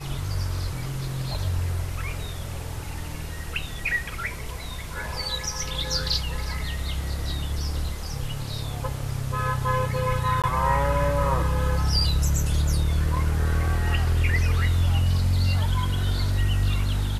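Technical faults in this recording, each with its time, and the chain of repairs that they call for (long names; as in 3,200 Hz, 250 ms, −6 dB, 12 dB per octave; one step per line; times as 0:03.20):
0:10.42–0:10.44: drop-out 17 ms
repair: repair the gap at 0:10.42, 17 ms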